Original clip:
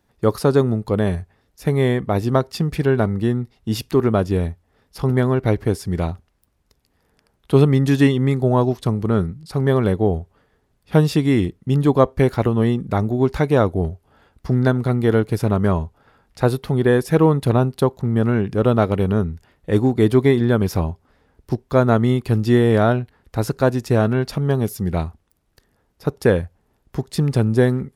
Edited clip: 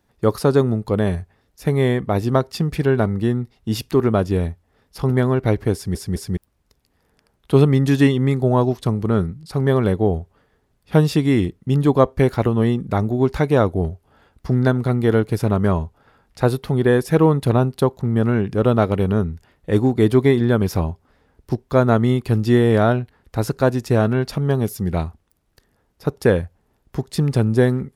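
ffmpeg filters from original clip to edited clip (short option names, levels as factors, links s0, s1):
-filter_complex "[0:a]asplit=4[s0][s1][s2][s3];[s0]atrim=end=5.952[s4];[s1]atrim=start=5.738:end=5.952[s5];[s2]atrim=start=5.738:end=5.952[s6];[s3]atrim=start=6.368[s7];[s4][s5]acrossfade=d=0.004:c1=hsin:c2=hsin[s8];[s8][s6]acrossfade=d=0.004:c1=hsin:c2=hsin[s9];[s9][s7]acrossfade=d=0.004:c1=hsin:c2=hsin"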